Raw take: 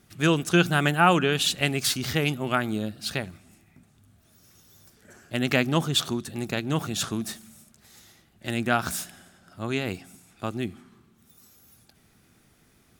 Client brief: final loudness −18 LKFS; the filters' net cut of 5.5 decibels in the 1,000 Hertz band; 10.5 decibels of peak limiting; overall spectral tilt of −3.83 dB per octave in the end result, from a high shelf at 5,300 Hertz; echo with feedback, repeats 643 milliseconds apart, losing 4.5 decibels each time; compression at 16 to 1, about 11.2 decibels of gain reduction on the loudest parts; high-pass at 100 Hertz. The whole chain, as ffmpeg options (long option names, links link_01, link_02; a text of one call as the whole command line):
ffmpeg -i in.wav -af "highpass=100,equalizer=frequency=1000:width_type=o:gain=-8.5,highshelf=frequency=5300:gain=7,acompressor=threshold=-27dB:ratio=16,alimiter=limit=-23dB:level=0:latency=1,aecho=1:1:643|1286|1929|2572|3215|3858|4501|5144|5787:0.596|0.357|0.214|0.129|0.0772|0.0463|0.0278|0.0167|0.01,volume=17dB" out.wav